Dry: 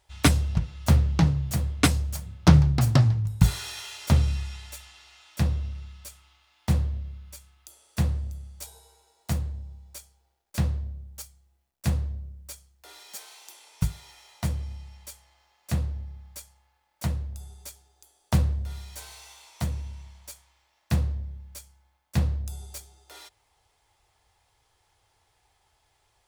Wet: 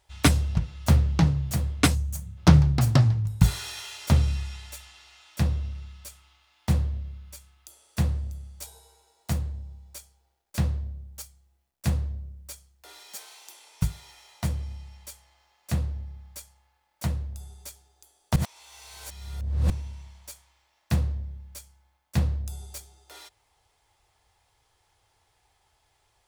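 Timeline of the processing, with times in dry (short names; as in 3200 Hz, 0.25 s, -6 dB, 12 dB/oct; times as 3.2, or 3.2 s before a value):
1.94–2.38 spectral gain 220–5700 Hz -8 dB
18.36–19.7 reverse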